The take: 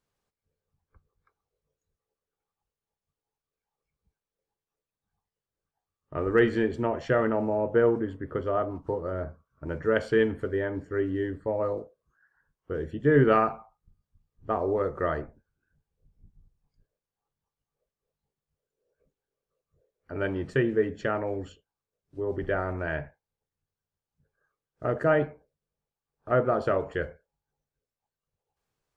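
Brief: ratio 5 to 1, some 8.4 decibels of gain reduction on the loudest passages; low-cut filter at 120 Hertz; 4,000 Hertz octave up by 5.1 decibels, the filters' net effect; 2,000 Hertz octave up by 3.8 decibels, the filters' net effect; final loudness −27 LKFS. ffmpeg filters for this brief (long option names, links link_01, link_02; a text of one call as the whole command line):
ffmpeg -i in.wav -af "highpass=120,equalizer=frequency=2000:width_type=o:gain=4,equalizer=frequency=4000:width_type=o:gain=5.5,acompressor=threshold=-25dB:ratio=5,volume=5dB" out.wav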